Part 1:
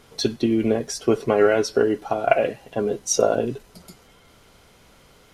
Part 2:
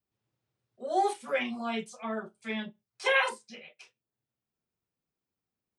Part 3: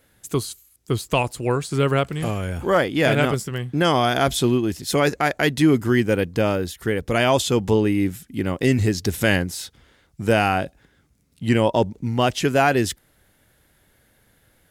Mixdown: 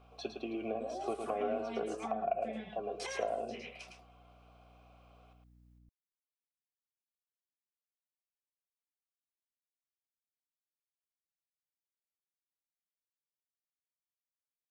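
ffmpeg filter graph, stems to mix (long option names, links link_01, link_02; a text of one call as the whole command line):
ffmpeg -i stem1.wav -i stem2.wav -filter_complex "[0:a]asplit=3[link_01][link_02][link_03];[link_01]bandpass=frequency=730:width_type=q:width=8,volume=0dB[link_04];[link_02]bandpass=frequency=1090:width_type=q:width=8,volume=-6dB[link_05];[link_03]bandpass=frequency=2440:width_type=q:width=8,volume=-9dB[link_06];[link_04][link_05][link_06]amix=inputs=3:normalize=0,bandreject=frequency=6800:width=23,volume=1dB,asplit=2[link_07][link_08];[link_08]volume=-7dB[link_09];[1:a]alimiter=limit=-24dB:level=0:latency=1,acompressor=threshold=-41dB:ratio=6,volume=1.5dB,asplit=2[link_10][link_11];[link_11]volume=-6dB[link_12];[link_09][link_12]amix=inputs=2:normalize=0,aecho=0:1:109:1[link_13];[link_07][link_10][link_13]amix=inputs=3:normalize=0,acrossover=split=360[link_14][link_15];[link_15]acompressor=threshold=-37dB:ratio=4[link_16];[link_14][link_16]amix=inputs=2:normalize=0,aeval=exprs='val(0)+0.000891*(sin(2*PI*60*n/s)+sin(2*PI*2*60*n/s)/2+sin(2*PI*3*60*n/s)/3+sin(2*PI*4*60*n/s)/4+sin(2*PI*5*60*n/s)/5)':channel_layout=same" out.wav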